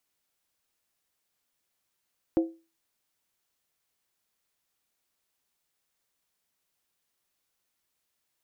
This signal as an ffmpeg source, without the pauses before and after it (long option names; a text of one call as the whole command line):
ffmpeg -f lavfi -i "aevalsrc='0.141*pow(10,-3*t/0.31)*sin(2*PI*329*t)+0.0473*pow(10,-3*t/0.246)*sin(2*PI*524.4*t)+0.0158*pow(10,-3*t/0.212)*sin(2*PI*702.7*t)+0.00531*pow(10,-3*t/0.205)*sin(2*PI*755.4*t)+0.00178*pow(10,-3*t/0.19)*sin(2*PI*872.8*t)':duration=0.63:sample_rate=44100" out.wav